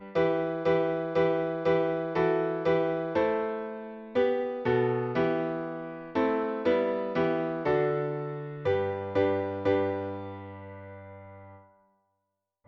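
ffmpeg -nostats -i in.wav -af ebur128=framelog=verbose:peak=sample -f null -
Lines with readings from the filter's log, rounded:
Integrated loudness:
  I:         -28.5 LUFS
  Threshold: -39.2 LUFS
Loudness range:
  LRA:         4.1 LU
  Threshold: -49.2 LUFS
  LRA low:   -31.6 LUFS
  LRA high:  -27.5 LUFS
Sample peak:
  Peak:      -13.7 dBFS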